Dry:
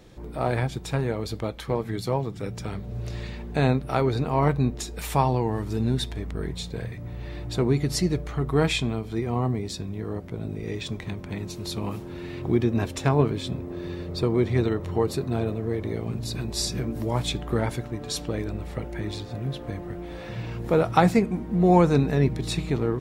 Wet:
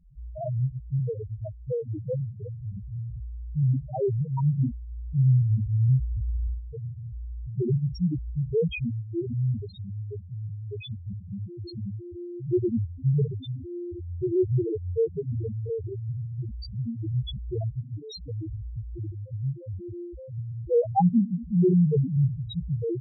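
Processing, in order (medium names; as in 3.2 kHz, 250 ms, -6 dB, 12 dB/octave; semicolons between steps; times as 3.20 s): 5.19–6.60 s: square wave that keeps the level; loudest bins only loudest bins 1; trim +6 dB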